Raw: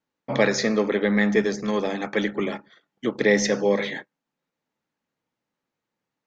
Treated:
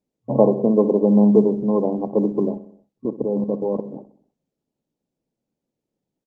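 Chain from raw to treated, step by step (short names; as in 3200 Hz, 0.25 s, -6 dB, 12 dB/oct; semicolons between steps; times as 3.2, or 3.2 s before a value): Wiener smoothing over 41 samples; FFT band-pass 110–1100 Hz; 2.54–3.94 level quantiser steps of 14 dB; on a send: feedback echo 63 ms, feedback 56%, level -16 dB; on the sum: gain +6.5 dB; Opus 24 kbps 48000 Hz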